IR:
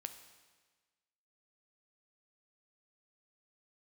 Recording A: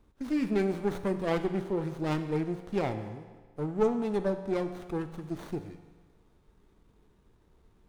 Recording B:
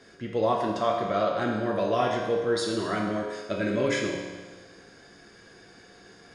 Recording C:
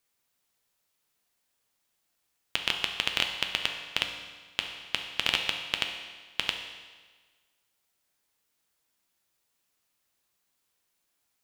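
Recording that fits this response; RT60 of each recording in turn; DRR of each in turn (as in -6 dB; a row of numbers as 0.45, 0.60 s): A; 1.4, 1.4, 1.4 s; 7.5, -1.5, 3.5 dB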